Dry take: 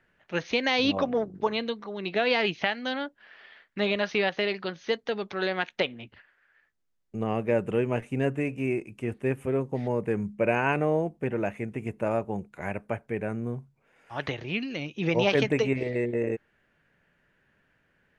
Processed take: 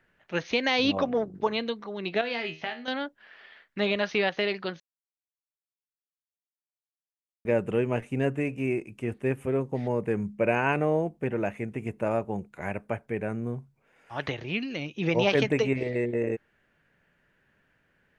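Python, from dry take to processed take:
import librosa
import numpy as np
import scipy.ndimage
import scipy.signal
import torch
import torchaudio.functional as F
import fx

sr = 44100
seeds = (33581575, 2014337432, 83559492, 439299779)

y = fx.comb_fb(x, sr, f0_hz=79.0, decay_s=0.3, harmonics='all', damping=0.0, mix_pct=80, at=(2.21, 2.88))
y = fx.edit(y, sr, fx.silence(start_s=4.8, length_s=2.65), tone=tone)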